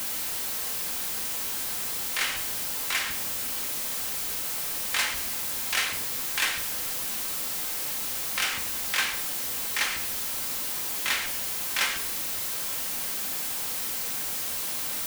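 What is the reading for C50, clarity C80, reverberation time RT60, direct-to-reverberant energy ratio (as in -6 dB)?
9.5 dB, 12.0 dB, 0.90 s, 4.0 dB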